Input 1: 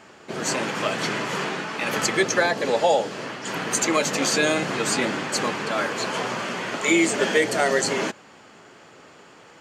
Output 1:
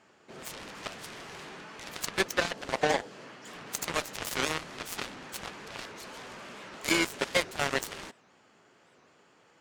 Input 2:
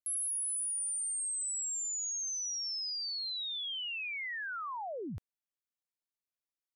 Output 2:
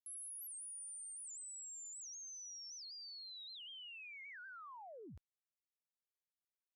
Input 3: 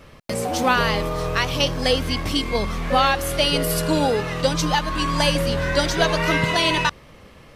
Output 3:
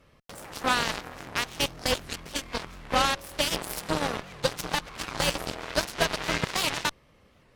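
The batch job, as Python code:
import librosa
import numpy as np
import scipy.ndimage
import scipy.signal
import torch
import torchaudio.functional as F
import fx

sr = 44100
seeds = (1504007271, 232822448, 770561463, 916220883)

y = fx.cheby_harmonics(x, sr, harmonics=(7,), levels_db=(-14,), full_scale_db=-5.0)
y = fx.record_warp(y, sr, rpm=78.0, depth_cents=250.0)
y = y * 10.0 ** (-5.5 / 20.0)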